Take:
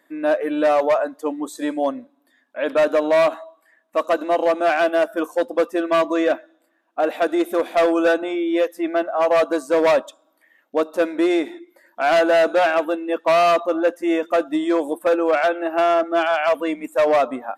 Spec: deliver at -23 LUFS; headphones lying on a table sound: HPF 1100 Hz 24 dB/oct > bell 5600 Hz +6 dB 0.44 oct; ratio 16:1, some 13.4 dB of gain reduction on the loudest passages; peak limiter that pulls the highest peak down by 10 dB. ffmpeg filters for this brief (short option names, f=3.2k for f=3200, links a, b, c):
-af "acompressor=threshold=-27dB:ratio=16,alimiter=level_in=1dB:limit=-24dB:level=0:latency=1,volume=-1dB,highpass=f=1.1k:w=0.5412,highpass=f=1.1k:w=1.3066,equalizer=f=5.6k:t=o:w=0.44:g=6,volume=19dB"